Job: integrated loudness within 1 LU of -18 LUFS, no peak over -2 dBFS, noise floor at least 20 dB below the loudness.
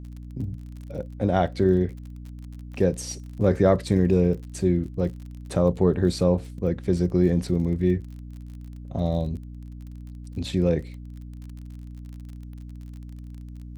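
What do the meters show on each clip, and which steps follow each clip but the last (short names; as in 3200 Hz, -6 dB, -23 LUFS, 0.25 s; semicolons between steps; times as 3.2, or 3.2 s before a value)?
ticks 35/s; hum 60 Hz; harmonics up to 300 Hz; hum level -36 dBFS; loudness -24.5 LUFS; peak -5.5 dBFS; loudness target -18.0 LUFS
-> de-click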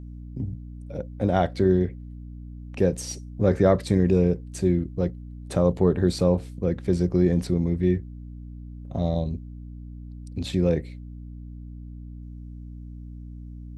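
ticks 0/s; hum 60 Hz; harmonics up to 300 Hz; hum level -36 dBFS
-> de-hum 60 Hz, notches 5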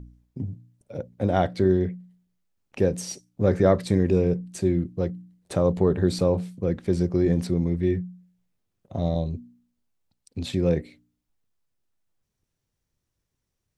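hum none; loudness -24.5 LUFS; peak -5.5 dBFS; loudness target -18.0 LUFS
-> gain +6.5 dB; limiter -2 dBFS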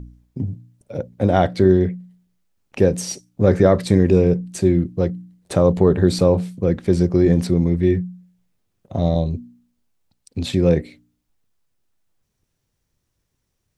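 loudness -18.5 LUFS; peak -2.0 dBFS; noise floor -74 dBFS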